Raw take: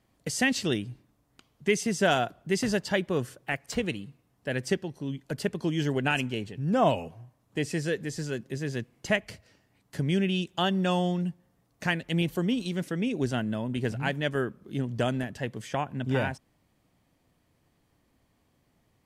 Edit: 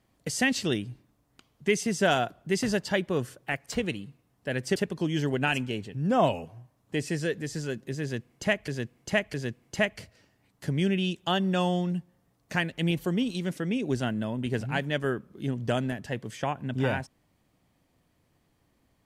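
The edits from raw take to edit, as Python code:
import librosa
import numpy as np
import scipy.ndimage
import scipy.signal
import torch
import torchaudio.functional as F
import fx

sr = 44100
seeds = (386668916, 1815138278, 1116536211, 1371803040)

y = fx.edit(x, sr, fx.cut(start_s=4.76, length_s=0.63),
    fx.repeat(start_s=8.65, length_s=0.66, count=3), tone=tone)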